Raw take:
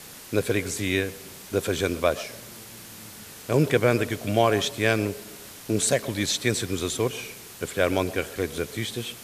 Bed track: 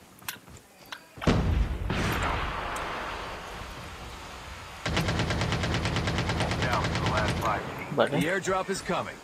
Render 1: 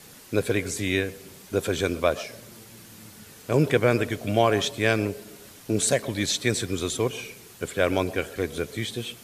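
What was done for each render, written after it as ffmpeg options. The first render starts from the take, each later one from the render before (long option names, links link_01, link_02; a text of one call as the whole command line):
ffmpeg -i in.wav -af "afftdn=noise_reduction=6:noise_floor=-44" out.wav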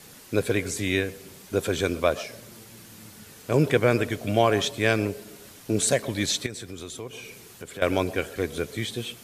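ffmpeg -i in.wav -filter_complex "[0:a]asettb=1/sr,asplit=3[link_01][link_02][link_03];[link_01]atrim=end=6.464[link_04];[link_02]atrim=start=6.46:end=7.82,asetpts=PTS-STARTPTS,afade=type=in:duration=0.004:curve=qsin,afade=type=out:start_time=1.356:duration=0.004:curve=qsin,acompressor=threshold=-38dB:ratio=2.5:attack=3.2:release=140:knee=1:detection=peak[link_05];[link_03]atrim=start=7.816[link_06];[link_04][link_05]acrossfade=duration=0.004:curve1=hsin:curve2=qsin[link_07];[link_07][link_06]acrossfade=duration=0.004:curve1=qsin:curve2=hsin" out.wav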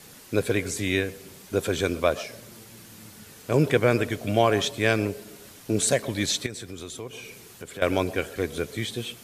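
ffmpeg -i in.wav -af anull out.wav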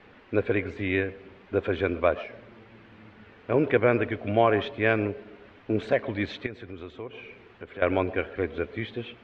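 ffmpeg -i in.wav -af "lowpass=frequency=2600:width=0.5412,lowpass=frequency=2600:width=1.3066,equalizer=frequency=150:width=2.6:gain=-10.5" out.wav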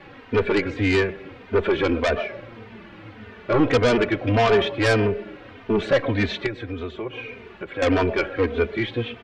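ffmpeg -i in.wav -filter_complex "[0:a]asplit=2[link_01][link_02];[link_02]aeval=exprs='0.422*sin(PI/2*3.98*val(0)/0.422)':channel_layout=same,volume=-6.5dB[link_03];[link_01][link_03]amix=inputs=2:normalize=0,asplit=2[link_04][link_05];[link_05]adelay=3.1,afreqshift=-1.7[link_06];[link_04][link_06]amix=inputs=2:normalize=1" out.wav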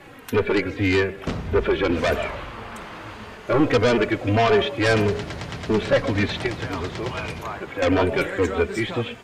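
ffmpeg -i in.wav -i bed.wav -filter_complex "[1:a]volume=-4.5dB[link_01];[0:a][link_01]amix=inputs=2:normalize=0" out.wav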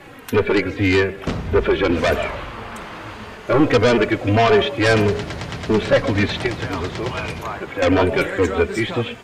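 ffmpeg -i in.wav -af "volume=3.5dB" out.wav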